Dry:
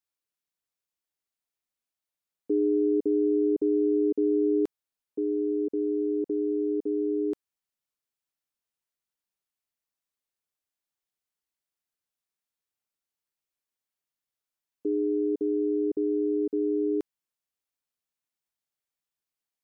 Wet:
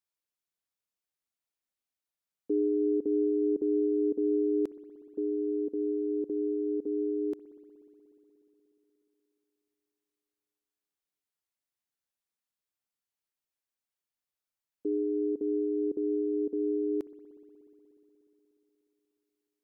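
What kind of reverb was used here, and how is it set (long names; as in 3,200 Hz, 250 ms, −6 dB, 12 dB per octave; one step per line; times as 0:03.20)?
spring reverb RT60 3.8 s, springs 60 ms, chirp 40 ms, DRR 13.5 dB
level −3 dB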